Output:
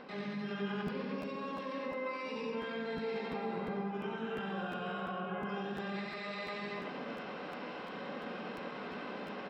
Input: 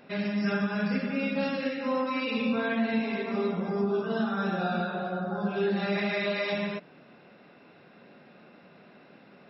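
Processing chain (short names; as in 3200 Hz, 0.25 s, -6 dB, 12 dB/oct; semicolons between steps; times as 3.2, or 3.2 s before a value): low shelf 210 Hz -7 dB; comb 3.9 ms, depth 43%; reverse; compressor 20:1, threshold -42 dBFS, peak gain reduction 20 dB; reverse; limiter -44 dBFS, peak gain reduction 10 dB; harmoniser -5 st -16 dB, +3 st -17 dB, +12 st -2 dB; air absorption 260 m; echo 91 ms -4.5 dB; on a send at -8 dB: reverb RT60 0.80 s, pre-delay 63 ms; on the sum: crackling interface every 0.35 s, samples 512, repeat, from 0.86; gain +9.5 dB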